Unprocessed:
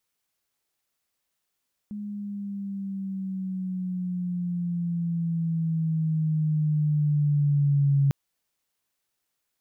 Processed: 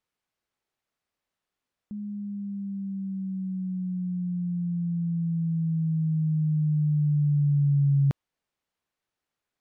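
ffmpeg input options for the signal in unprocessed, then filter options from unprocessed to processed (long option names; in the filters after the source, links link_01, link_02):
-f lavfi -i "aevalsrc='pow(10,(-17.5+14*(t/6.2-1))/20)*sin(2*PI*208*6.2/(-7*log(2)/12)*(exp(-7*log(2)/12*t/6.2)-1))':duration=6.2:sample_rate=44100"
-af "aemphasis=mode=reproduction:type=75kf"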